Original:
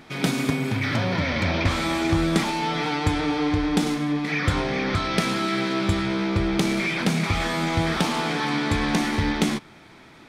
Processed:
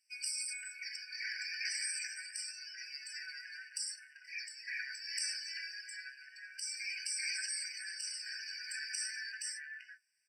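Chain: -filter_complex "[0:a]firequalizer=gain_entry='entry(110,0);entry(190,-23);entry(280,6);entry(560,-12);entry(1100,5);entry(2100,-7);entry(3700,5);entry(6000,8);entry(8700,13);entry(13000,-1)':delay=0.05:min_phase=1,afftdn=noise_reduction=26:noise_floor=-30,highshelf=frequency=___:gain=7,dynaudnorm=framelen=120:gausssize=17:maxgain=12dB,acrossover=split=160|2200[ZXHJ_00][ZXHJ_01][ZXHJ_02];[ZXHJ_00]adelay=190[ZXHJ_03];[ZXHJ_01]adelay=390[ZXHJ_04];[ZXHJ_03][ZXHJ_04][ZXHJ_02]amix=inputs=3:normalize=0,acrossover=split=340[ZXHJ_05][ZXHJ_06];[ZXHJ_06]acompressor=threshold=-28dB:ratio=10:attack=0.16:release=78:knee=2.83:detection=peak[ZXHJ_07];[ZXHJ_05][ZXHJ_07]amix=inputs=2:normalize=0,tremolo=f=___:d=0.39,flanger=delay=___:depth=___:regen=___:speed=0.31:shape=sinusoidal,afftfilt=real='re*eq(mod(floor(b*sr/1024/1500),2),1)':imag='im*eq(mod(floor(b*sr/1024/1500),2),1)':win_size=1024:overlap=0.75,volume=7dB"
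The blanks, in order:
9100, 0.56, 7.9, 6.9, 62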